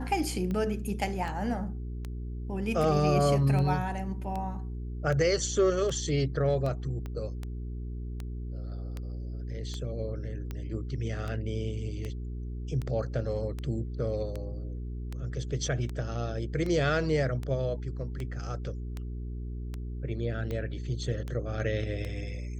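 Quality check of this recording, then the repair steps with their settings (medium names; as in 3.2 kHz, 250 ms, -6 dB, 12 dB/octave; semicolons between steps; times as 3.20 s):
hum 60 Hz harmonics 7 -36 dBFS
tick 78 rpm -23 dBFS
7.06 s: pop -26 dBFS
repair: de-click; de-hum 60 Hz, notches 7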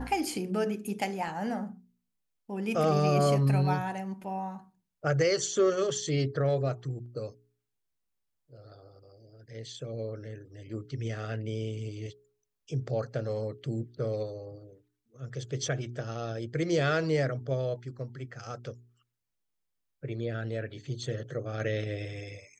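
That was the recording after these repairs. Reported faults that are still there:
7.06 s: pop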